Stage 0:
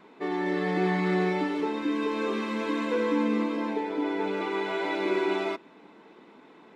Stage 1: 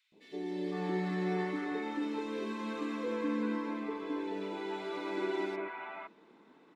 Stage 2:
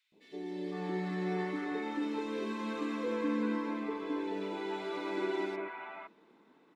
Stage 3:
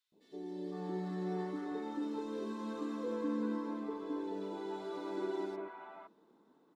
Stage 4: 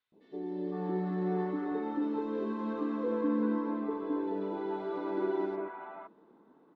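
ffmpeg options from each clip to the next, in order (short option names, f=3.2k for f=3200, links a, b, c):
-filter_complex "[0:a]acrossover=split=670|2500[a][b][c];[a]adelay=120[d];[b]adelay=510[e];[d][e][c]amix=inputs=3:normalize=0,volume=-7dB"
-af "dynaudnorm=f=280:g=11:m=3.5dB,volume=-2.5dB"
-af "equalizer=f=2.3k:w=1.6:g=-14.5,volume=-3dB"
-af "lowpass=2.2k,volume=6dB"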